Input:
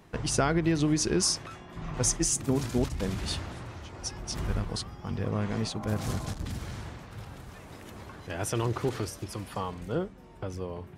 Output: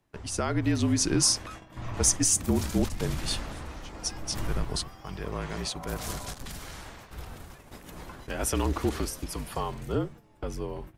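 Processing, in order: frequency shift -46 Hz; gate -45 dBFS, range -10 dB; 4.88–7.11 s: bass shelf 410 Hz -8 dB; level rider gain up to 10 dB; treble shelf 11 kHz +10.5 dB; trim -8 dB

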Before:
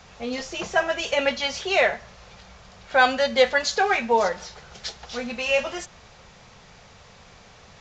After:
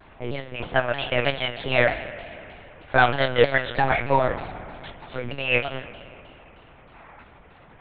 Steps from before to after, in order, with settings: level-controlled noise filter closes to 2 kHz, open at -16 dBFS; time-frequency box 6.95–7.23 s, 650–2600 Hz +7 dB; spring tank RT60 2.8 s, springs 57 ms, chirp 55 ms, DRR 11 dB; monotone LPC vocoder at 8 kHz 130 Hz; vibrato with a chosen wave saw down 3.2 Hz, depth 160 cents

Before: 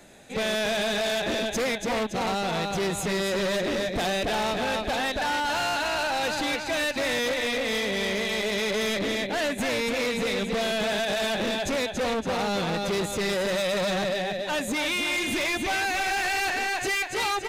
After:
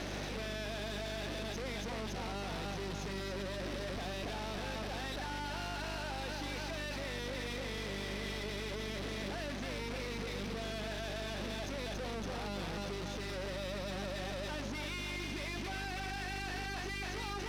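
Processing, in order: one-bit comparator; steep low-pass 6.4 kHz 96 dB/octave; peak limiter -26 dBFS, peak gain reduction 5.5 dB; valve stage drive 33 dB, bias 0.5; mains buzz 50 Hz, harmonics 8, -38 dBFS -4 dB/octave; trim -6 dB

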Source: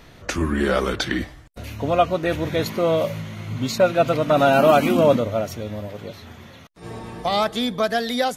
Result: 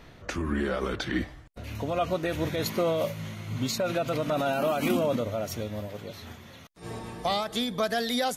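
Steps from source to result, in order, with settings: treble shelf 4.7 kHz -6 dB, from 1.75 s +5.5 dB; peak limiter -14.5 dBFS, peak gain reduction 10 dB; random flutter of the level, depth 55%; trim -1.5 dB

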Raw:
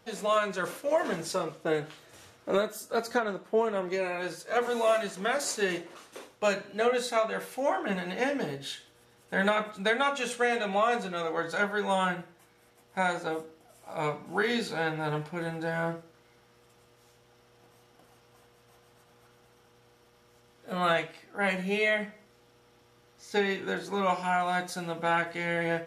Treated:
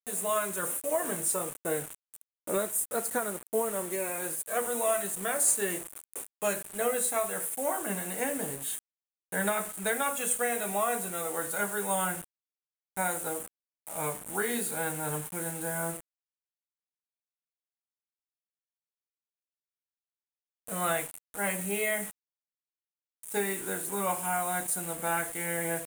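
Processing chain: bit crusher 7-bit; resonant high shelf 6.8 kHz +12 dB, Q 3; trim -3.5 dB

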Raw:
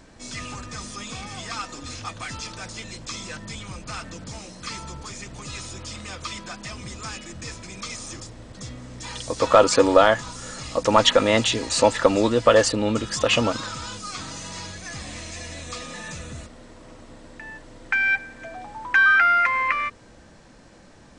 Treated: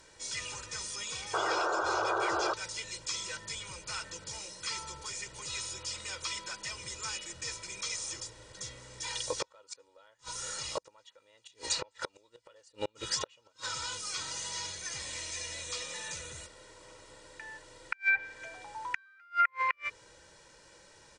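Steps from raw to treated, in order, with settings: inverted gate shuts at -11 dBFS, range -38 dB; tilt EQ +2.5 dB/octave; comb 2.1 ms, depth 71%; painted sound noise, 1.33–2.54 s, 320–1600 Hz -23 dBFS; low-pass that closes with the level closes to 2 kHz, closed at -12.5 dBFS; trim -8 dB

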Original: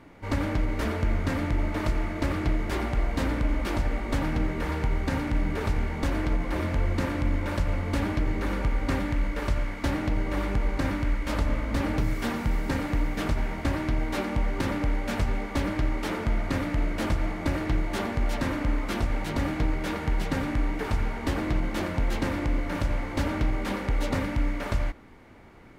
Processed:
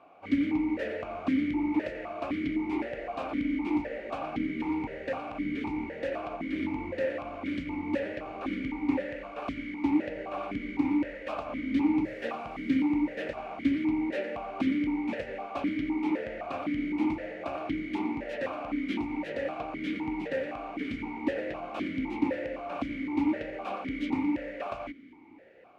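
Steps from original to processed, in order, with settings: stepped vowel filter 3.9 Hz; trim +8.5 dB

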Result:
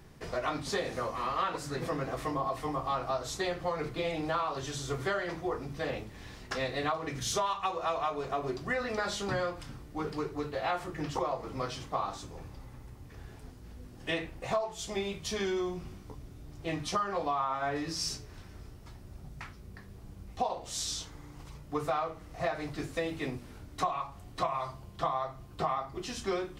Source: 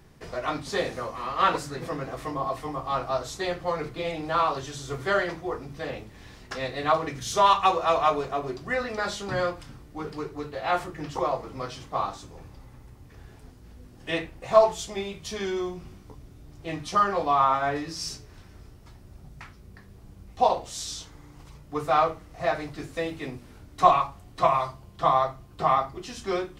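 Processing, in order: compression 10:1, threshold -28 dBFS, peak gain reduction 17 dB

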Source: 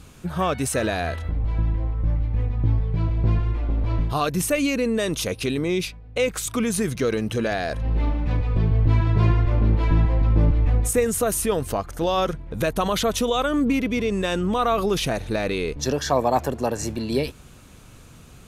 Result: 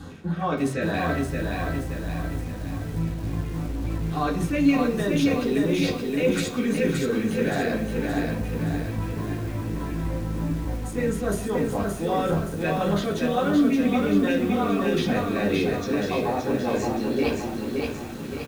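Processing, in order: treble shelf 7.6 kHz -10.5 dB; reverse; compression 10:1, threshold -33 dBFS, peak gain reduction 19.5 dB; reverse; crossover distortion -58.5 dBFS; LFO notch square 4.8 Hz 970–2400 Hz; speakerphone echo 170 ms, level -18 dB; reverberation RT60 0.45 s, pre-delay 3 ms, DRR -4.5 dB; bit-crushed delay 572 ms, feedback 55%, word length 8-bit, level -3 dB; trim +3 dB

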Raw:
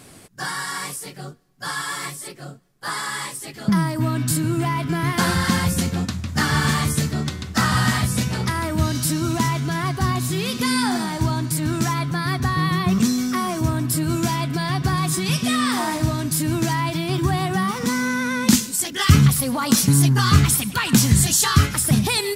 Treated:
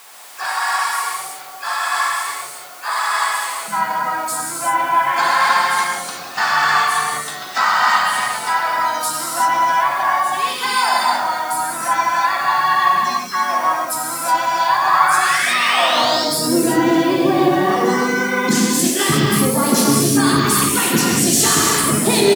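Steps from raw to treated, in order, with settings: spectral gate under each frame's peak -25 dB strong; peaking EQ 120 Hz +4 dB 2.7 oct; hum notches 60/120/180/240/300 Hz; painted sound rise, 14.67–16.25 s, 940–5600 Hz -27 dBFS; in parallel at -6 dB: word length cut 6-bit, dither triangular; on the sum: high-pass sweep 920 Hz -> 360 Hz, 15.43–16.49 s; harmony voices -4 st -10 dB, +7 st -13 dB; gated-style reverb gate 390 ms flat, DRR -4.5 dB; trim -4.5 dB

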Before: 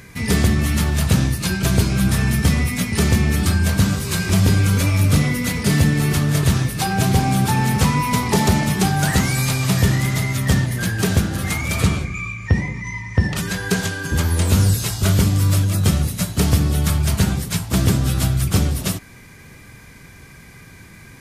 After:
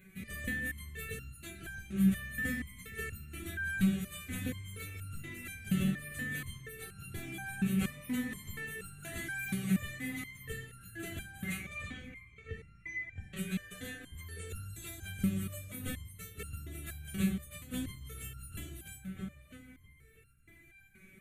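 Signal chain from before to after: 1.42–1.96 s: compression, threshold -19 dBFS, peak gain reduction 8.5 dB; 11.63–12.50 s: Chebyshev low-pass 5.5 kHz, order 2; 13.72–14.28 s: whistle 730 Hz -35 dBFS; static phaser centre 2.2 kHz, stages 4; filtered feedback delay 648 ms, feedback 48%, low-pass 2.7 kHz, level -9.5 dB; resonator arpeggio 4.2 Hz 190–1400 Hz; trim -1 dB

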